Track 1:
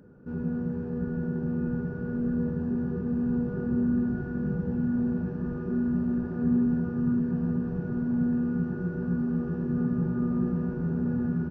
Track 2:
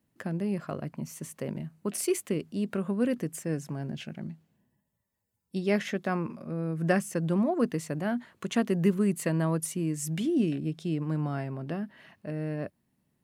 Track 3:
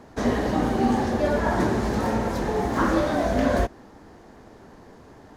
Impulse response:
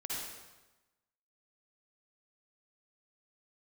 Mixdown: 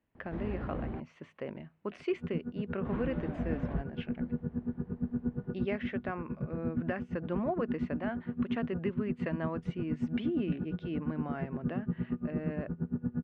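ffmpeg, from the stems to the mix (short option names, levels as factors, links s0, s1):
-filter_complex "[0:a]aeval=exprs='val(0)*pow(10,-26*(0.5-0.5*cos(2*PI*8.6*n/s))/20)':c=same,adelay=1900,volume=0.631[s0];[1:a]equalizer=f=150:w=0.78:g=-14.5,volume=0.891[s1];[2:a]asoftclip=type=tanh:threshold=0.0562,lowshelf=f=200:g=12,adelay=150,volume=0.141,asplit=3[s2][s3][s4];[s2]atrim=end=1,asetpts=PTS-STARTPTS,afade=t=out:st=0.996:d=0.004:c=hsin[s5];[s3]atrim=start=1:end=2.85,asetpts=PTS-STARTPTS,volume=0[s6];[s4]atrim=start=2.85,asetpts=PTS-STARTPTS,afade=t=in:d=0.004:c=hsin[s7];[s5][s6][s7]concat=n=3:v=0:a=1[s8];[s0][s1][s8]amix=inputs=3:normalize=0,lowpass=f=2900:w=0.5412,lowpass=f=2900:w=1.3066,equalizer=f=93:w=0.38:g=4.5,alimiter=limit=0.0794:level=0:latency=1:release=422"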